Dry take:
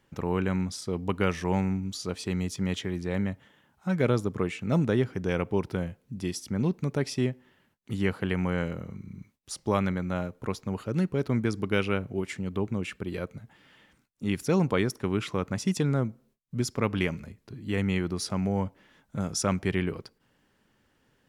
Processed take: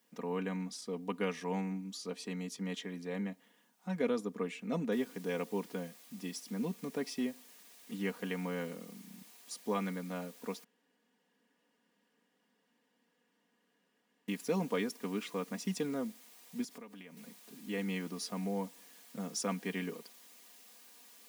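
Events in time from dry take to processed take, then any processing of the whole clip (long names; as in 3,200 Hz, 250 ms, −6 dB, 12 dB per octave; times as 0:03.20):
0:04.92: noise floor change −69 dB −51 dB
0:10.64–0:14.28: fill with room tone
0:16.64–0:17.17: downward compressor 10 to 1, threshold −37 dBFS
whole clip: high-pass filter 190 Hz 24 dB per octave; notch filter 1,400 Hz, Q 12; comb filter 4.2 ms, depth 71%; level −9 dB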